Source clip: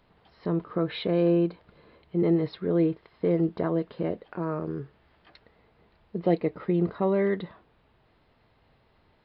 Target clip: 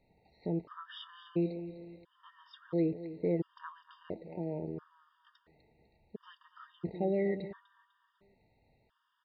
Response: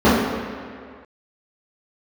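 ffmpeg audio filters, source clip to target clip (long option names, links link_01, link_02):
-af "aecho=1:1:250|500|750|1000:0.211|0.0845|0.0338|0.0135,afftfilt=real='re*gt(sin(2*PI*0.73*pts/sr)*(1-2*mod(floor(b*sr/1024/930),2)),0)':imag='im*gt(sin(2*PI*0.73*pts/sr)*(1-2*mod(floor(b*sr/1024/930),2)),0)':win_size=1024:overlap=0.75,volume=-6.5dB"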